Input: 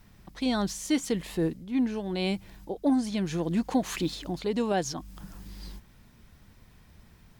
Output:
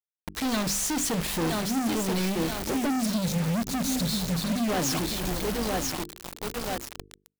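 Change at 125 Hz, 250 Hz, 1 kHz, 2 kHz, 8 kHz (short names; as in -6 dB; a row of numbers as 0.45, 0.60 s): +5.0, +1.0, +4.0, +5.5, +10.5 dB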